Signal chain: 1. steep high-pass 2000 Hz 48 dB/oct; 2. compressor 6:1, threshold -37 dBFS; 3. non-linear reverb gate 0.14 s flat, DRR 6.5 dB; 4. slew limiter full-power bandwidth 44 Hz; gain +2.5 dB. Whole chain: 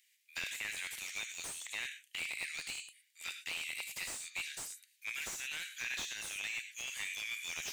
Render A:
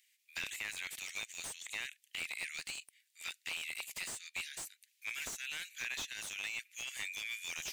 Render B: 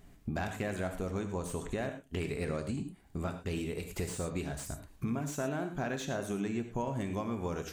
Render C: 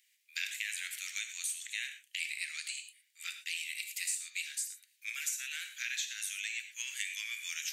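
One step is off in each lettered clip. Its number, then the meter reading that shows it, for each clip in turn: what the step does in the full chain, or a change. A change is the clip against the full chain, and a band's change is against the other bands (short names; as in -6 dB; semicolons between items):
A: 3, loudness change -1.0 LU; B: 1, 4 kHz band -27.0 dB; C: 4, distortion -3 dB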